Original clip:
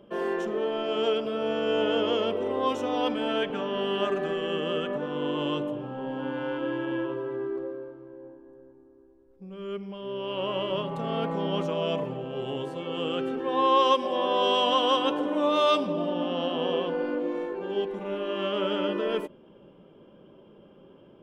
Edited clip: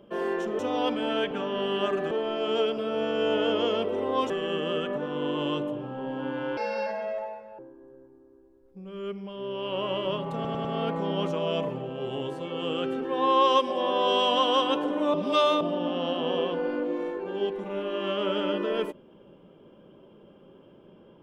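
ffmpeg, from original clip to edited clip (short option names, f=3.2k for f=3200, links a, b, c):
-filter_complex "[0:a]asplit=11[a][b][c][d][e][f][g][h][i][j][k];[a]atrim=end=0.592[l];[b]atrim=start=2.778:end=4.302[m];[c]atrim=start=0.588:end=2.782[n];[d]atrim=start=4.298:end=6.574[o];[e]atrim=start=6.57:end=8.24,asetpts=PTS-STARTPTS,asetrate=72324,aresample=44100[p];[f]atrim=start=8.236:end=11.102[q];[g]atrim=start=10.998:end=11.102[r];[h]atrim=start=10.998:end=11.102[s];[i]atrim=start=10.998:end=15.492[t];[j]atrim=start=15.488:end=15.962,asetpts=PTS-STARTPTS,areverse[u];[k]atrim=start=15.958[v];[l][m]acrossfade=d=0.004:c1=hsin:c2=hsin[w];[w][n]acrossfade=d=0.004:c1=hsin:c2=hsin[x];[x][o]acrossfade=d=0.004:c1=hsin:c2=hsin[y];[y][p]acrossfade=d=0.004:c1=hsin:c2=hsin[z];[z][q]acrossfade=d=0.004:c1=hsin:c2=hsin[aa];[aa][r]acrossfade=d=0.004:c1=hsin:c2=hsin[ab];[ab][s]acrossfade=d=0.004:c1=hsin:c2=hsin[ac];[ac][t]acrossfade=d=0.004:c1=hsin:c2=hsin[ad];[ad][u]acrossfade=d=0.004:c1=hsin:c2=hsin[ae];[ae][v]acrossfade=d=0.004:c1=hsin:c2=hsin"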